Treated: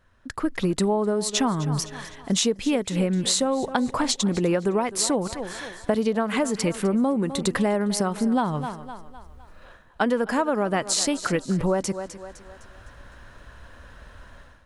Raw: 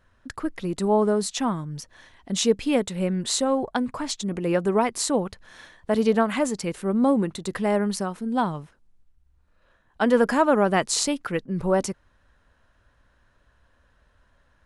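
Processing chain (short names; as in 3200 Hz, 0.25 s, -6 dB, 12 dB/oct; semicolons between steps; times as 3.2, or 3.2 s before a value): AGC gain up to 16.5 dB; on a send: thinning echo 0.255 s, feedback 45%, high-pass 200 Hz, level -17.5 dB; on the sum: compressor 12:1, threshold -19 dBFS, peak gain reduction 13.5 dB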